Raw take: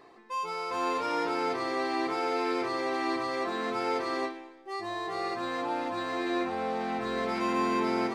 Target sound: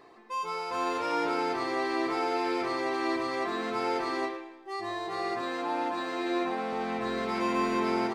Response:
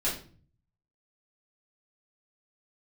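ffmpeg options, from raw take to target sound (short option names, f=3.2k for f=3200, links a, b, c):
-filter_complex "[0:a]asettb=1/sr,asplit=3[a][b][c];[a]atrim=end=5.414[d];[b]atrim=start=5.41:end=6.73,asetpts=PTS-STARTPTS,afade=t=in:d=0.004:c=qsin,afade=t=out:st=1.316:d=0.004:c=qsin,highpass=f=160:w=0.5412,highpass=f=160:w=1.3066[e];[c]atrim=start=6.726[f];[d][e]acrossfade=d=0.004:c1=hsin:c2=qsin[g];[g][f]acrossfade=d=0.004:c1=qsin:c2=hsin,asplit=2[h][i];[i]adelay=110,highpass=300,lowpass=3.4k,asoftclip=type=hard:threshold=-25.5dB,volume=-7dB[j];[h][j]amix=inputs=2:normalize=0"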